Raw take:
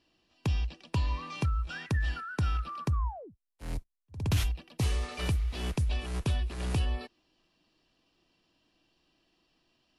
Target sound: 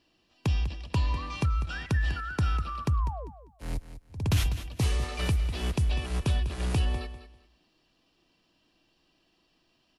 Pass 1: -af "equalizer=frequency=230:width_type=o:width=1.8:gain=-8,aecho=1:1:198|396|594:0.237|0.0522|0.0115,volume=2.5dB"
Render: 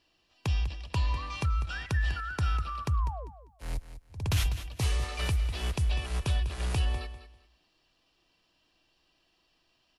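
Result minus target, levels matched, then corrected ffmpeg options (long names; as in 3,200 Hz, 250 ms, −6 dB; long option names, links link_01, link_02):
250 Hz band −5.0 dB
-af "aecho=1:1:198|396|594:0.237|0.0522|0.0115,volume=2.5dB"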